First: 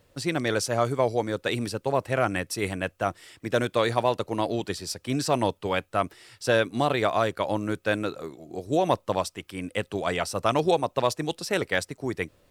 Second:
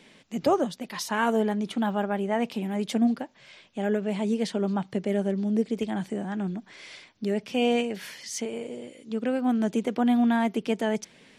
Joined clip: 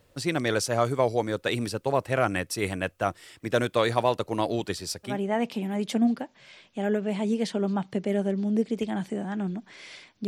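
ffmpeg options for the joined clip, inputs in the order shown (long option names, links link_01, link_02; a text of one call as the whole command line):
ffmpeg -i cue0.wav -i cue1.wav -filter_complex "[0:a]apad=whole_dur=10.27,atrim=end=10.27,atrim=end=5.19,asetpts=PTS-STARTPTS[link_01];[1:a]atrim=start=2.03:end=7.27,asetpts=PTS-STARTPTS[link_02];[link_01][link_02]acrossfade=duration=0.16:curve1=tri:curve2=tri" out.wav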